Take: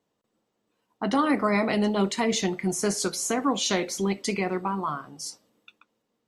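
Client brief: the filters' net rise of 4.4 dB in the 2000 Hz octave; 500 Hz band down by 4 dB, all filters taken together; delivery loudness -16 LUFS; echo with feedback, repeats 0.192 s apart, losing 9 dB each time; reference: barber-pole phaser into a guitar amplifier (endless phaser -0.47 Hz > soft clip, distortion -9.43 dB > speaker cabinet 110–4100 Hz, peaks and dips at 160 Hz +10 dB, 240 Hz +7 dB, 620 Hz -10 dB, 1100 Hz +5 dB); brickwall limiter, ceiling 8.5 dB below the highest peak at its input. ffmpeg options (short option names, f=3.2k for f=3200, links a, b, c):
-filter_complex "[0:a]equalizer=f=500:t=o:g=-3.5,equalizer=f=2k:t=o:g=5,alimiter=limit=-17.5dB:level=0:latency=1,aecho=1:1:192|384|576|768:0.355|0.124|0.0435|0.0152,asplit=2[a][b];[b]afreqshift=-0.47[c];[a][c]amix=inputs=2:normalize=1,asoftclip=threshold=-31.5dB,highpass=110,equalizer=f=160:t=q:w=4:g=10,equalizer=f=240:t=q:w=4:g=7,equalizer=f=620:t=q:w=4:g=-10,equalizer=f=1.1k:t=q:w=4:g=5,lowpass=f=4.1k:w=0.5412,lowpass=f=4.1k:w=1.3066,volume=18.5dB"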